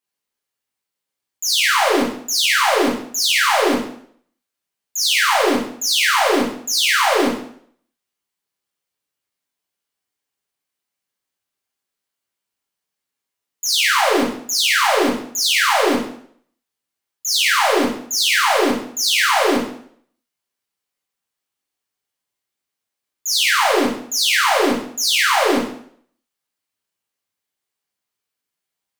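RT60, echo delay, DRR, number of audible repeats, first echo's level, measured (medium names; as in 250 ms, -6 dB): 0.60 s, no echo, -4.5 dB, no echo, no echo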